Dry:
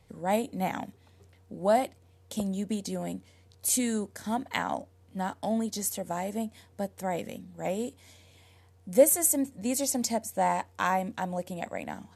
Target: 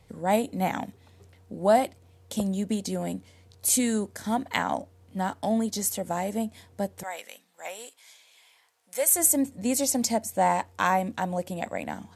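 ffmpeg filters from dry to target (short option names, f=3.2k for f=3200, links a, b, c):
-filter_complex "[0:a]asettb=1/sr,asplit=3[a][b][c];[a]atrim=end=7.034[d];[b]atrim=start=7.03:end=9.16,asetpts=PTS-STARTPTS,afade=t=in:d=0.004:c=qsin,afade=t=out:st=2.126:d=0.004:c=qsin,highpass=1.1k[e];[c]atrim=start=9.156[f];[d][e]acrossfade=d=0.004:c1=hsin:c2=qsin[g];[g][f]acrossfade=d=0.004:c1=qsin:c2=hsin,volume=3.5dB"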